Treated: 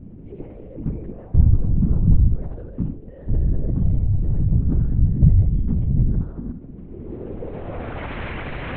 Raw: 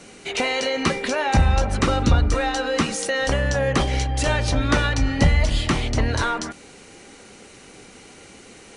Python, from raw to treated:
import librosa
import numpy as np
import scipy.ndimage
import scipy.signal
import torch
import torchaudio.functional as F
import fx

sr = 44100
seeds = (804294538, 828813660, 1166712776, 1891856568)

p1 = scipy.signal.sosfilt(scipy.signal.butter(2, 60.0, 'highpass', fs=sr, output='sos'), x)
p2 = fx.high_shelf(p1, sr, hz=3000.0, db=9.5)
p3 = fx.over_compress(p2, sr, threshold_db=-32.0, ratio=-1.0)
p4 = p2 + (p3 * 10.0 ** (-1.0 / 20.0))
p5 = fx.filter_sweep_lowpass(p4, sr, from_hz=130.0, to_hz=1700.0, start_s=6.63, end_s=8.14, q=1.1)
p6 = p5 + fx.echo_feedback(p5, sr, ms=73, feedback_pct=52, wet_db=-10, dry=0)
p7 = fx.lpc_vocoder(p6, sr, seeds[0], excitation='whisper', order=8)
y = p7 * 10.0 ** (4.5 / 20.0)